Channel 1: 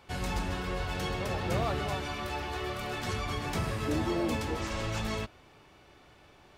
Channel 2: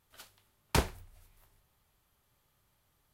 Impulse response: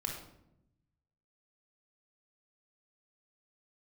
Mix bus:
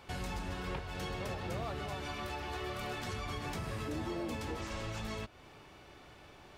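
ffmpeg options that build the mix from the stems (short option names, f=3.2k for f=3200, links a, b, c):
-filter_complex "[0:a]acompressor=threshold=-41dB:ratio=2,volume=2dB[a];[1:a]lowpass=f=3.4k:w=0.5412,lowpass=f=3.4k:w=1.3066,volume=-9dB[b];[a][b]amix=inputs=2:normalize=0,alimiter=level_in=5.5dB:limit=-24dB:level=0:latency=1:release=325,volume=-5.5dB"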